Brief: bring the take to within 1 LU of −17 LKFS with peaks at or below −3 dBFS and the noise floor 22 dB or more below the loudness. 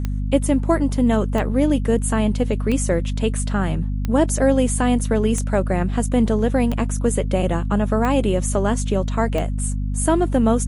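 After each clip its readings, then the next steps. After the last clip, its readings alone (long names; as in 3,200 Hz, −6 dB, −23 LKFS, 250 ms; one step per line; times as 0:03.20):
number of clicks 8; mains hum 50 Hz; hum harmonics up to 250 Hz; level of the hum −20 dBFS; integrated loudness −20.5 LKFS; sample peak −5.0 dBFS; target loudness −17.0 LKFS
→ click removal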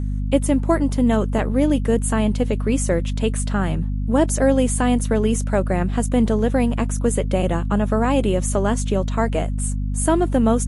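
number of clicks 0; mains hum 50 Hz; hum harmonics up to 250 Hz; level of the hum −20 dBFS
→ hum removal 50 Hz, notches 5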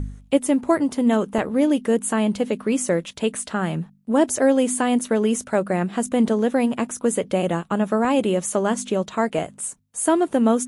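mains hum none found; integrated loudness −21.5 LKFS; sample peak −6.0 dBFS; target loudness −17.0 LKFS
→ level +4.5 dB
brickwall limiter −3 dBFS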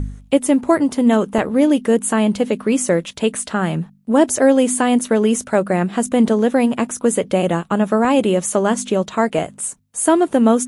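integrated loudness −17.5 LKFS; sample peak −3.0 dBFS; background noise floor −46 dBFS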